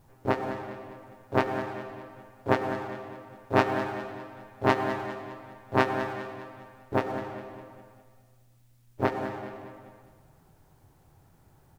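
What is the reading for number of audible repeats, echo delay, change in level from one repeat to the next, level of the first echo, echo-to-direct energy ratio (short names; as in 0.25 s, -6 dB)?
4, 0.203 s, -7.0 dB, -12.0 dB, -11.0 dB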